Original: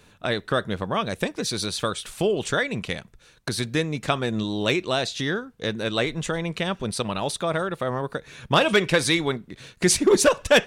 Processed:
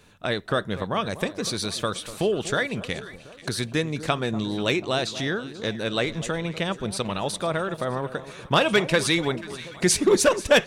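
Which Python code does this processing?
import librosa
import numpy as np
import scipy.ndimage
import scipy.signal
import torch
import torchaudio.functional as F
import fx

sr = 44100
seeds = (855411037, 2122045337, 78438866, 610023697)

y = fx.echo_alternate(x, sr, ms=243, hz=1100.0, feedback_pct=70, wet_db=-13.5)
y = y * librosa.db_to_amplitude(-1.0)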